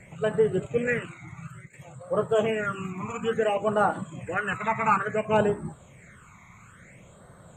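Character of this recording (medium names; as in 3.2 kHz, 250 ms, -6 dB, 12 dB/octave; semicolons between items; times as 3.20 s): phasing stages 12, 0.58 Hz, lowest notch 500–2400 Hz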